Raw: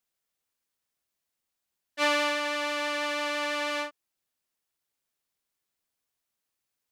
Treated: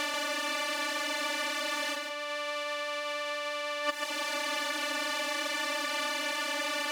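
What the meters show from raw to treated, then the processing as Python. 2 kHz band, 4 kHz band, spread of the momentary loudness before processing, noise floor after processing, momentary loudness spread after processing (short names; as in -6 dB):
+1.5 dB, +3.5 dB, 8 LU, -36 dBFS, 3 LU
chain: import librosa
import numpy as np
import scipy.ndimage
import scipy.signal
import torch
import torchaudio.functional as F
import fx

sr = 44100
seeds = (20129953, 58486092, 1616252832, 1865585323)

y = fx.bin_compress(x, sr, power=0.2)
y = fx.dereverb_blind(y, sr, rt60_s=0.6)
y = fx.over_compress(y, sr, threshold_db=-31.0, ratio=-0.5)
y = y + 10.0 ** (-5.5 / 20.0) * np.pad(y, (int(138 * sr / 1000.0), 0))[:len(y)]
y = y * 10.0 ** (1.0 / 20.0)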